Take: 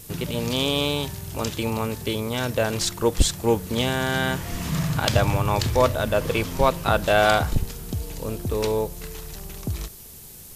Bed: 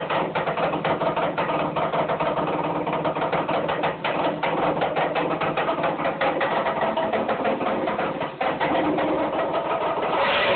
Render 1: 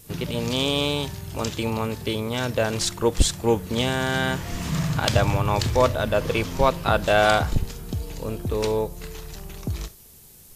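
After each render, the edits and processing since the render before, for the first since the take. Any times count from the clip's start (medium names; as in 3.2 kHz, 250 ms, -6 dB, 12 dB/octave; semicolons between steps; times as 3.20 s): noise print and reduce 6 dB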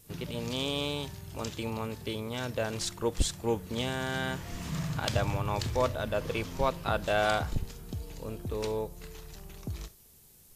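trim -9 dB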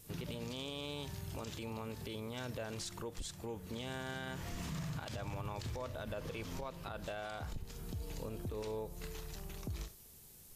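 compression 4:1, threshold -36 dBFS, peak gain reduction 14 dB; peak limiter -33 dBFS, peak gain reduction 10.5 dB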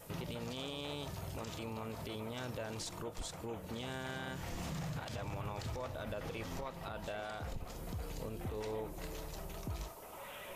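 add bed -28.5 dB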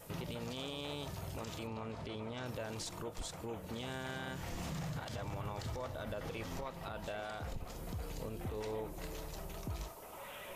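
1.67–2.46 s: distance through air 83 m; 4.91–6.28 s: band-stop 2.5 kHz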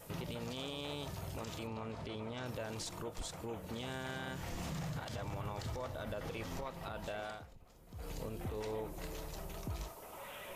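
7.28–8.09 s: dip -15.5 dB, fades 0.19 s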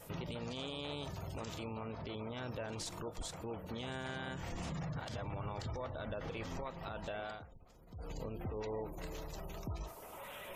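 spectral gate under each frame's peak -30 dB strong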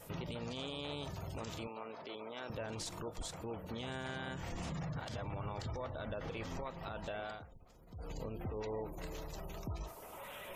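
1.67–2.50 s: high-pass 350 Hz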